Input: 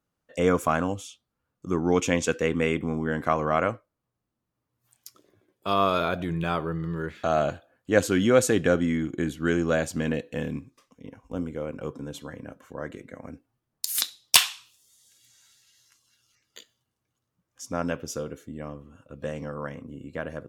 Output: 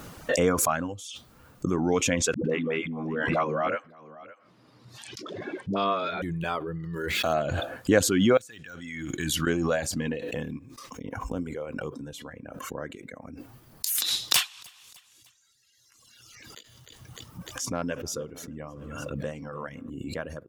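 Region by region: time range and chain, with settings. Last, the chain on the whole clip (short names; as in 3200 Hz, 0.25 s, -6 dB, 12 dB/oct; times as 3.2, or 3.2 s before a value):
2.34–6.22 Chebyshev band-pass 180–4000 Hz + dispersion highs, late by 0.107 s, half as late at 350 Hz + echo 0.563 s -17 dB
6.94–7.34 median filter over 5 samples + high shelf 7800 Hz +11 dB
8.37–9.47 de-esser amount 85% + passive tone stack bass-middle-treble 5-5-5
14.01–19.9 hard clip -15.5 dBFS + feedback echo 0.301 s, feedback 38%, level -17 dB
whole clip: reverb removal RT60 1.4 s; backwards sustainer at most 25 dB/s; gain -1.5 dB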